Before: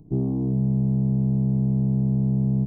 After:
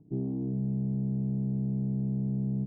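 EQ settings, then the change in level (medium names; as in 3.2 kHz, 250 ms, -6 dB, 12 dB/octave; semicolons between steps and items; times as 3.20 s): band-pass filter 310 Hz, Q 0.55; distance through air 490 m; -6.0 dB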